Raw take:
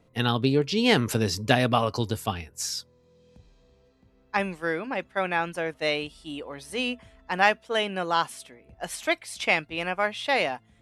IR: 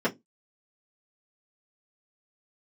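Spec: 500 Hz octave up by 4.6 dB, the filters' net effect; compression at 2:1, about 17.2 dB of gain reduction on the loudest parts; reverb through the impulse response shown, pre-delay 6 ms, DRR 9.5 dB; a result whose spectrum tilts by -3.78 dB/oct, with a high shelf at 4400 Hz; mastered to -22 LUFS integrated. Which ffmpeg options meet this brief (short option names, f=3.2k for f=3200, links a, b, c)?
-filter_complex "[0:a]equalizer=f=500:t=o:g=5.5,highshelf=f=4.4k:g=5.5,acompressor=threshold=-46dB:ratio=2,asplit=2[a][b];[1:a]atrim=start_sample=2205,adelay=6[c];[b][c]afir=irnorm=-1:irlink=0,volume=-21.5dB[d];[a][d]amix=inputs=2:normalize=0,volume=16dB"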